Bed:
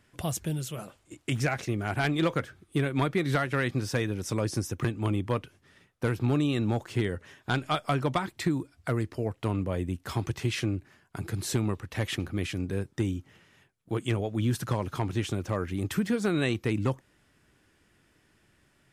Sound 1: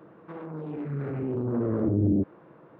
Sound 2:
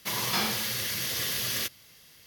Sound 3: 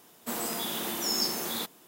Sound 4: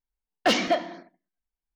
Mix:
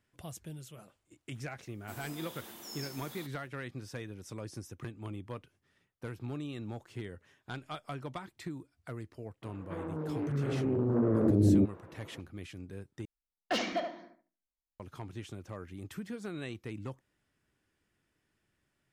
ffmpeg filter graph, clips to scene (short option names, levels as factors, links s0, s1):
-filter_complex "[0:a]volume=0.211[s0];[4:a]asplit=2[s1][s2];[s2]adelay=74,lowpass=f=2100:p=1,volume=0.531,asplit=2[s3][s4];[s4]adelay=74,lowpass=f=2100:p=1,volume=0.18,asplit=2[s5][s6];[s6]adelay=74,lowpass=f=2100:p=1,volume=0.18[s7];[s1][s3][s5][s7]amix=inputs=4:normalize=0[s8];[s0]asplit=2[s9][s10];[s9]atrim=end=13.054[s11];[s8]atrim=end=1.75,asetpts=PTS-STARTPTS,volume=0.299[s12];[s10]atrim=start=14.796[s13];[3:a]atrim=end=1.87,asetpts=PTS-STARTPTS,volume=0.158,afade=t=in:d=0.004:c=hsin,afade=t=out:st=1.866:d=0.004:c=hsin,adelay=1610[s14];[1:a]atrim=end=2.79,asetpts=PTS-STARTPTS,volume=0.944,afade=t=in:d=0.004:c=hsin,afade=t=out:st=2.786:d=0.004:c=hsin,adelay=9420[s15];[s11][s12]acrossfade=d=0.004:c1=hsin:c2=hsin[s16];[s16][s13]acrossfade=d=0.004:c1=hsin:c2=hsin[s17];[s17][s14][s15]amix=inputs=3:normalize=0"